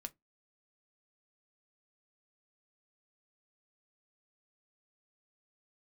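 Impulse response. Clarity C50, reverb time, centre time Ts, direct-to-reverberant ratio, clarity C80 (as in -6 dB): 27.5 dB, 0.15 s, 3 ms, 7.5 dB, 39.5 dB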